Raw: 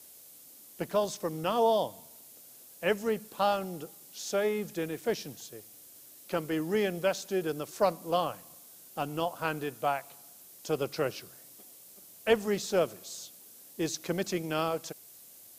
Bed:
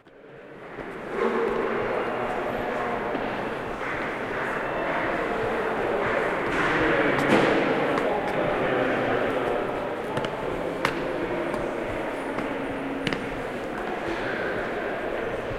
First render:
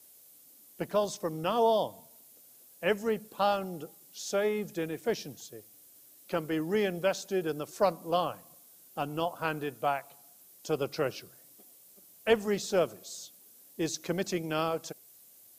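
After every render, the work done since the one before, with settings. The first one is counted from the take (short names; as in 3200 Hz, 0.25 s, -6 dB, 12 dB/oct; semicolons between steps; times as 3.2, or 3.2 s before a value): denoiser 6 dB, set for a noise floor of -53 dBFS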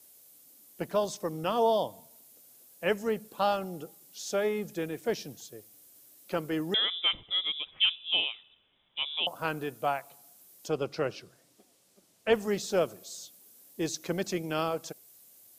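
6.74–9.27 inverted band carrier 3700 Hz; 10.68–12.33 air absorption 60 m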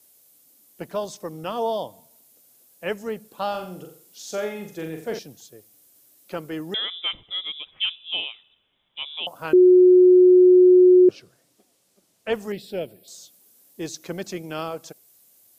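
3.5–5.19 flutter echo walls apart 7.5 m, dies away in 0.46 s; 9.53–11.09 bleep 364 Hz -9 dBFS; 12.52–13.08 fixed phaser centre 2800 Hz, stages 4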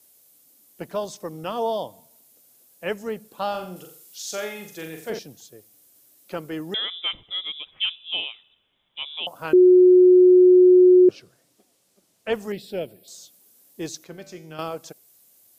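3.76–5.1 tilt shelf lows -5.5 dB, about 1200 Hz; 14.04–14.59 resonator 53 Hz, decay 0.68 s, harmonics odd, mix 70%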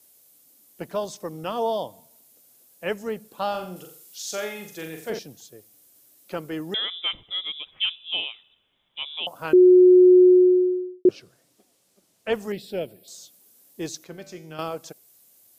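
10.12–11.05 studio fade out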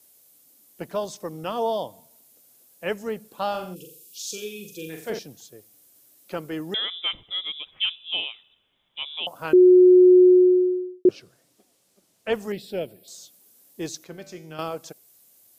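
3.74–4.89 spectral gain 540–2300 Hz -29 dB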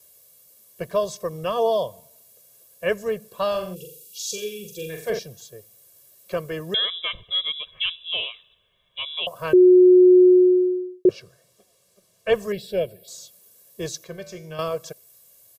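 low shelf 330 Hz +3 dB; comb 1.8 ms, depth 99%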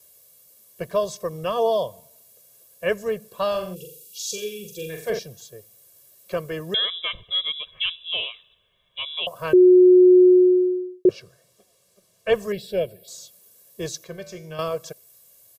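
nothing audible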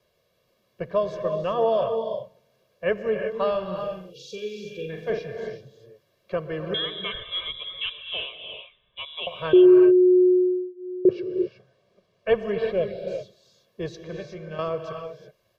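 air absorption 290 m; non-linear reverb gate 0.4 s rising, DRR 5 dB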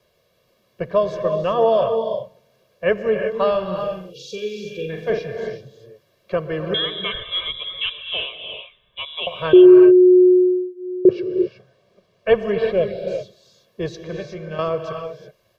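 gain +5.5 dB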